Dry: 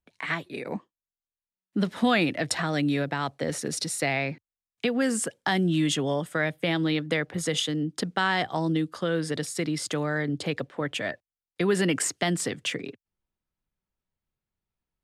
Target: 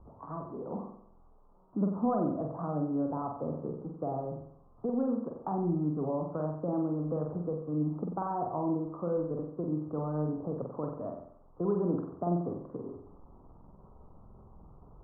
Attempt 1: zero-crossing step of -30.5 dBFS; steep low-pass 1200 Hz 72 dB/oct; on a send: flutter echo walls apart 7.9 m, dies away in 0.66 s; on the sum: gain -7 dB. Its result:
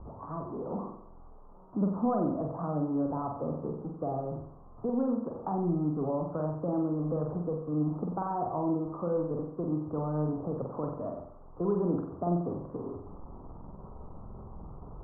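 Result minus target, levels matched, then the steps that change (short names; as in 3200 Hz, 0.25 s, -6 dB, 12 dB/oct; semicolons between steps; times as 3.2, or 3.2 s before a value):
zero-crossing step: distortion +8 dB
change: zero-crossing step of -39.5 dBFS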